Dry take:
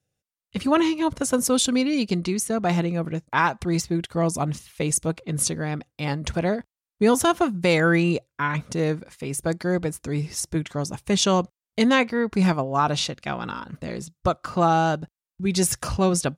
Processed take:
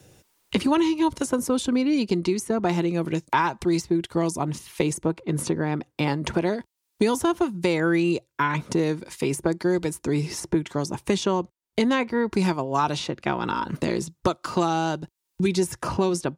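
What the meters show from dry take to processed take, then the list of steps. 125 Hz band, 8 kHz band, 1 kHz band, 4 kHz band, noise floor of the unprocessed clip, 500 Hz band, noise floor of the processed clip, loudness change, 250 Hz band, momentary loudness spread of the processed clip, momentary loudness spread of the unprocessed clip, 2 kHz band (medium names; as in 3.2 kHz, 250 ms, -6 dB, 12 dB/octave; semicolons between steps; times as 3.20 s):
-2.5 dB, -7.0 dB, -1.5 dB, -4.0 dB, under -85 dBFS, -0.5 dB, -78 dBFS, -1.5 dB, 0.0 dB, 6 LU, 10 LU, -3.0 dB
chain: small resonant body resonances 350/930 Hz, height 9 dB, ringing for 30 ms; three bands compressed up and down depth 100%; trim -5 dB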